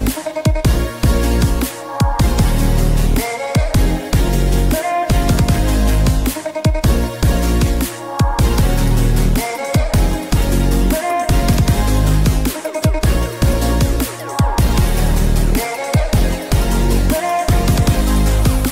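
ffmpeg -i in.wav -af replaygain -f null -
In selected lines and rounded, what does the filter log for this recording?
track_gain = +0.5 dB
track_peak = 0.509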